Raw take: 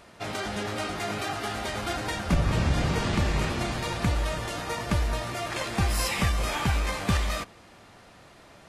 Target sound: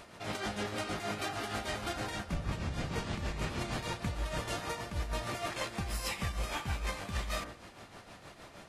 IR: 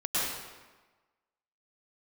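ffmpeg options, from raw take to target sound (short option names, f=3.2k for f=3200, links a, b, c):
-af "bandreject=f=59.79:t=h:w=4,bandreject=f=119.58:t=h:w=4,bandreject=f=179.37:t=h:w=4,bandreject=f=239.16:t=h:w=4,bandreject=f=298.95:t=h:w=4,bandreject=f=358.74:t=h:w=4,bandreject=f=418.53:t=h:w=4,bandreject=f=478.32:t=h:w=4,bandreject=f=538.11:t=h:w=4,bandreject=f=597.9:t=h:w=4,bandreject=f=657.69:t=h:w=4,bandreject=f=717.48:t=h:w=4,bandreject=f=777.27:t=h:w=4,bandreject=f=837.06:t=h:w=4,bandreject=f=896.85:t=h:w=4,bandreject=f=956.64:t=h:w=4,bandreject=f=1.01643k:t=h:w=4,bandreject=f=1.07622k:t=h:w=4,bandreject=f=1.13601k:t=h:w=4,bandreject=f=1.1958k:t=h:w=4,bandreject=f=1.25559k:t=h:w=4,bandreject=f=1.31538k:t=h:w=4,bandreject=f=1.37517k:t=h:w=4,bandreject=f=1.43496k:t=h:w=4,bandreject=f=1.49475k:t=h:w=4,bandreject=f=1.55454k:t=h:w=4,bandreject=f=1.61433k:t=h:w=4,bandreject=f=1.67412k:t=h:w=4,bandreject=f=1.73391k:t=h:w=4,bandreject=f=1.7937k:t=h:w=4,bandreject=f=1.85349k:t=h:w=4,bandreject=f=1.91328k:t=h:w=4,bandreject=f=1.97307k:t=h:w=4,bandreject=f=2.03286k:t=h:w=4,bandreject=f=2.09265k:t=h:w=4,areverse,acompressor=threshold=-34dB:ratio=6,areverse,tremolo=f=6.4:d=0.57,volume=3dB"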